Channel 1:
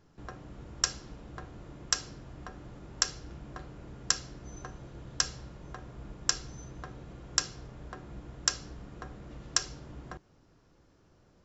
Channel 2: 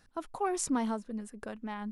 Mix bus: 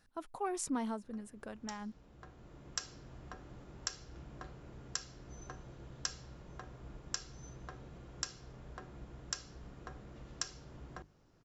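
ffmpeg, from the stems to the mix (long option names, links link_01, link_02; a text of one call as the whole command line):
ffmpeg -i stem1.wav -i stem2.wav -filter_complex "[0:a]alimiter=limit=-14.5dB:level=0:latency=1:release=320,bandreject=frequency=50:width_type=h:width=6,bandreject=frequency=100:width_type=h:width=6,bandreject=frequency=150:width_type=h:width=6,bandreject=frequency=200:width_type=h:width=6,bandreject=frequency=250:width_type=h:width=6,bandreject=frequency=300:width_type=h:width=6,adelay=850,volume=-4.5dB[link_01];[1:a]volume=-5.5dB,asplit=2[link_02][link_03];[link_03]apad=whole_len=542012[link_04];[link_01][link_04]sidechaincompress=threshold=-50dB:ratio=12:attack=49:release=1350[link_05];[link_05][link_02]amix=inputs=2:normalize=0" out.wav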